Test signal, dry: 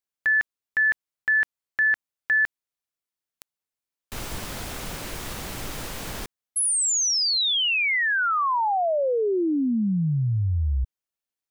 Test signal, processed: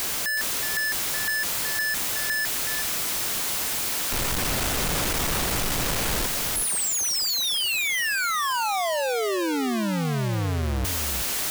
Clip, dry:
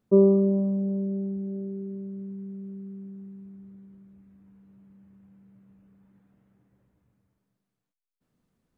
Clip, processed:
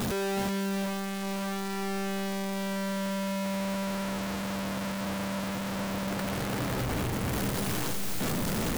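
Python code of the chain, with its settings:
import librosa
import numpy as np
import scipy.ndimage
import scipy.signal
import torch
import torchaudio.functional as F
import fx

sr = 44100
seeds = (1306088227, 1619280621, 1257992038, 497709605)

p1 = np.sign(x) * np.sqrt(np.mean(np.square(x)))
y = p1 + fx.echo_single(p1, sr, ms=371, db=-7.5, dry=0)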